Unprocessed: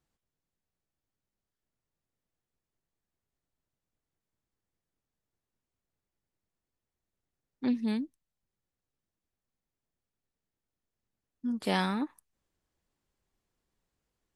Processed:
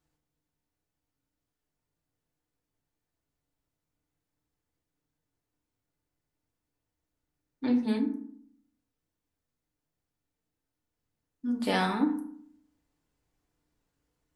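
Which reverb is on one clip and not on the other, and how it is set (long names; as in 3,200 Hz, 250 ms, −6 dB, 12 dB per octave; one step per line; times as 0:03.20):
feedback delay network reverb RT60 0.62 s, low-frequency decay 1.3×, high-frequency decay 0.45×, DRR 0.5 dB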